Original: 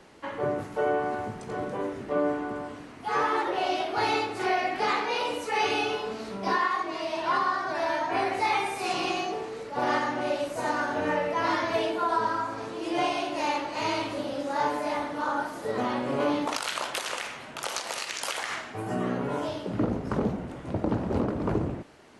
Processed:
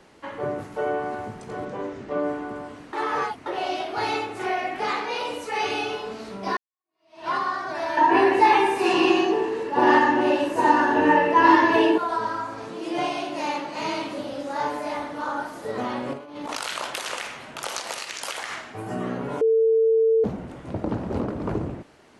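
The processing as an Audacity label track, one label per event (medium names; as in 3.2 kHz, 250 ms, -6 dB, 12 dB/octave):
1.650000	2.230000	low-pass 7.7 kHz 24 dB/octave
2.930000	3.460000	reverse
4.170000	4.850000	peaking EQ 4.6 kHz -6.5 dB 0.46 oct
6.570000	7.280000	fade in exponential
7.970000	11.980000	small resonant body resonances 350/940/1700/2700 Hz, height 15 dB, ringing for 20 ms
12.690000	14.200000	resonant low shelf 120 Hz -10 dB, Q 3
16.130000	17.950000	compressor with a negative ratio -31 dBFS, ratio -0.5
19.410000	20.240000	bleep 448 Hz -15.5 dBFS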